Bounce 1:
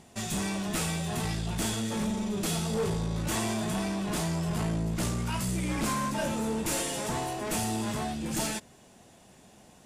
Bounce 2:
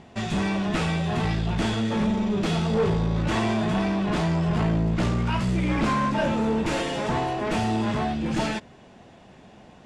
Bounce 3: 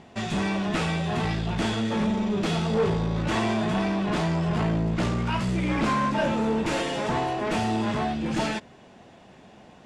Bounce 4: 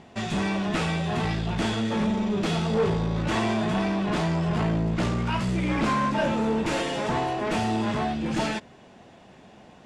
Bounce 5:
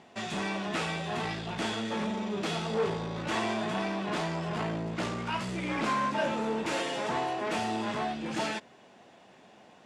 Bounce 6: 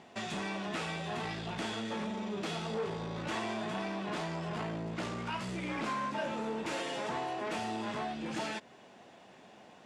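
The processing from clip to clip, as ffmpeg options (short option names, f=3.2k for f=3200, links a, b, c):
-af "lowpass=3.2k,volume=7dB"
-af "lowshelf=f=120:g=-5.5"
-af anull
-af "highpass=f=350:p=1,volume=-3dB"
-af "acompressor=threshold=-37dB:ratio=2"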